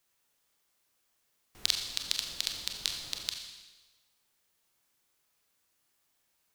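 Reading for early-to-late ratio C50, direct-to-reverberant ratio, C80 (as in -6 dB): 5.5 dB, 2.5 dB, 6.5 dB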